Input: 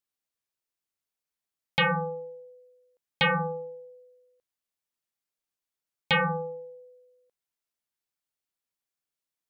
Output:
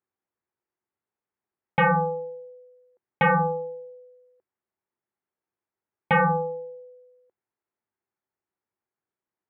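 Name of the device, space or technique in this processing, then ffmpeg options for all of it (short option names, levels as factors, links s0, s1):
bass cabinet: -af "highpass=64,equalizer=f=100:t=q:w=4:g=6,equalizer=f=210:t=q:w=4:g=4,equalizer=f=370:t=q:w=4:g=10,equalizer=f=860:t=q:w=4:g=5,lowpass=f=2000:w=0.5412,lowpass=f=2000:w=1.3066,volume=1.5"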